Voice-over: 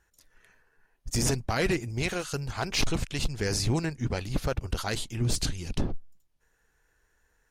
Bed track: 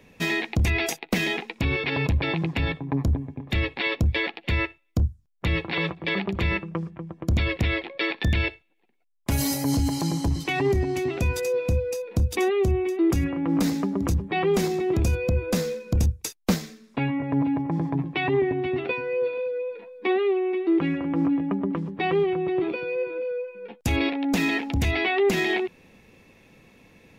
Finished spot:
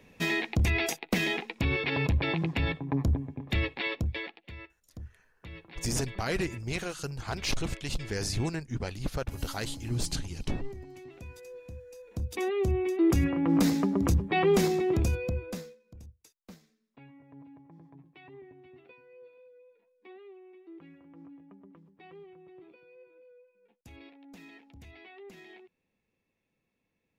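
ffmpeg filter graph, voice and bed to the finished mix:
-filter_complex "[0:a]adelay=4700,volume=-4dB[a];[1:a]volume=16.5dB,afade=t=out:st=3.54:d=0.98:silence=0.133352,afade=t=in:st=11.91:d=1.35:silence=0.1,afade=t=out:st=14.68:d=1.08:silence=0.0473151[b];[a][b]amix=inputs=2:normalize=0"

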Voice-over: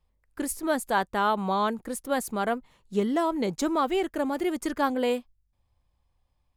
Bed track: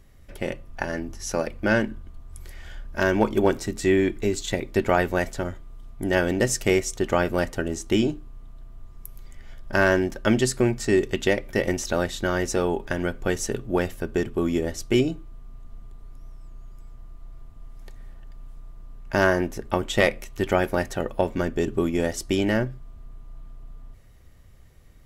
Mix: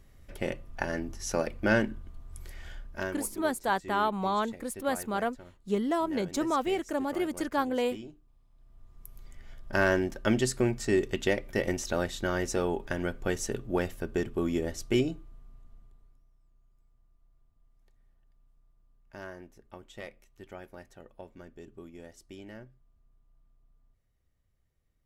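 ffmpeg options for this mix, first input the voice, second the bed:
-filter_complex "[0:a]adelay=2750,volume=-3dB[a];[1:a]volume=13dB,afade=t=out:st=2.68:d=0.52:silence=0.11885,afade=t=in:st=8.5:d=0.79:silence=0.149624,afade=t=out:st=14.98:d=1.28:silence=0.125893[b];[a][b]amix=inputs=2:normalize=0"

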